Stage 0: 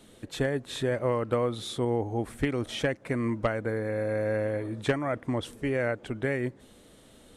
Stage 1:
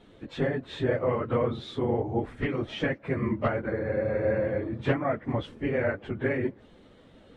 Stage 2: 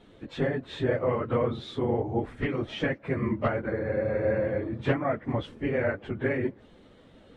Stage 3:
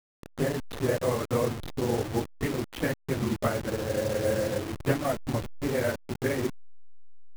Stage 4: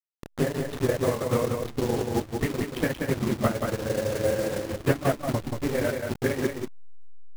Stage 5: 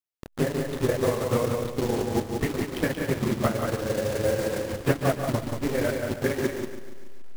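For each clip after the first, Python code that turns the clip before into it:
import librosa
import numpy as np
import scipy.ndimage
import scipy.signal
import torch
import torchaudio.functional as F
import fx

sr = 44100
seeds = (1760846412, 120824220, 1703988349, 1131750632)

y1 = fx.phase_scramble(x, sr, seeds[0], window_ms=50)
y1 = scipy.signal.sosfilt(scipy.signal.butter(2, 2900.0, 'lowpass', fs=sr, output='sos'), y1)
y1 = F.gain(torch.from_numpy(y1), 1.0).numpy()
y2 = y1
y3 = fx.delta_hold(y2, sr, step_db=-30.0)
y4 = fx.transient(y3, sr, attack_db=4, sustain_db=-9)
y4 = y4 + 10.0 ** (-5.0 / 20.0) * np.pad(y4, (int(181 * sr / 1000.0), 0))[:len(y4)]
y5 = fx.block_float(y4, sr, bits=5)
y5 = fx.echo_crushed(y5, sr, ms=143, feedback_pct=55, bits=8, wet_db=-10)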